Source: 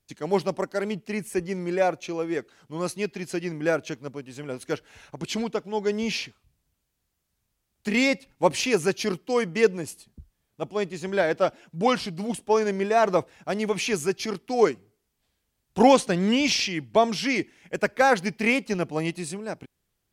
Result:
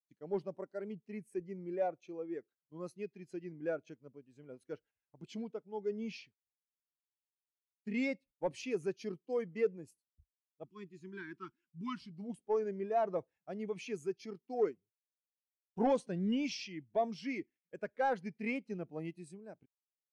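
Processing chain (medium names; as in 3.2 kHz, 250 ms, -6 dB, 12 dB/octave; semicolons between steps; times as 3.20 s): gate -44 dBFS, range -13 dB; 10.64–12.11 s: elliptic band-stop 370–970 Hz, stop band 40 dB; saturation -14.5 dBFS, distortion -14 dB; spectral contrast expander 1.5:1; trim -7.5 dB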